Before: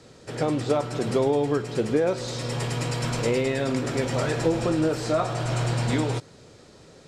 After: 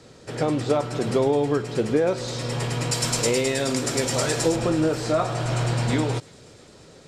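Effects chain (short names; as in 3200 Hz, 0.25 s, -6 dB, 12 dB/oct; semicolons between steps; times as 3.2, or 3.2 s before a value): 2.91–4.56 tone controls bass -3 dB, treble +12 dB; thin delay 0.343 s, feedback 71%, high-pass 3200 Hz, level -22 dB; gain +1.5 dB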